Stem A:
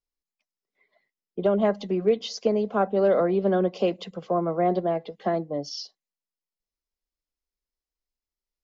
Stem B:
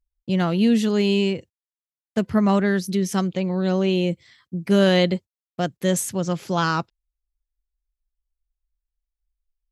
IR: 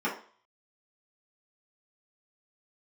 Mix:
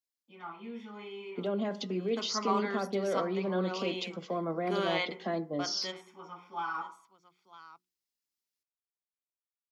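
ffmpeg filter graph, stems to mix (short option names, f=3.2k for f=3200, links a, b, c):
-filter_complex "[0:a]equalizer=f=620:w=0.42:g=-13,alimiter=level_in=5.5dB:limit=-24dB:level=0:latency=1:release=20,volume=-5.5dB,volume=1.5dB,asplit=3[a][b][c];[b]volume=-20.5dB[d];[1:a]acrossover=split=440 4900:gain=0.1 1 0.158[e][f][g];[e][f][g]amix=inputs=3:normalize=0,bandreject=f=60:t=h:w=6,bandreject=f=120:t=h:w=6,bandreject=f=180:t=h:w=6,bandreject=f=240:t=h:w=6,bandreject=f=300:t=h:w=6,bandreject=f=360:t=h:w=6,aecho=1:1:0.9:0.72,volume=-11.5dB,asplit=3[h][i][j];[i]volume=-16.5dB[k];[j]volume=-23dB[l];[c]apad=whole_len=428410[m];[h][m]sidechaingate=range=-33dB:threshold=-45dB:ratio=16:detection=peak[n];[2:a]atrim=start_sample=2205[o];[d][k]amix=inputs=2:normalize=0[p];[p][o]afir=irnorm=-1:irlink=0[q];[l]aecho=0:1:957:1[r];[a][n][q][r]amix=inputs=4:normalize=0,dynaudnorm=f=110:g=17:m=3.5dB,highpass=180"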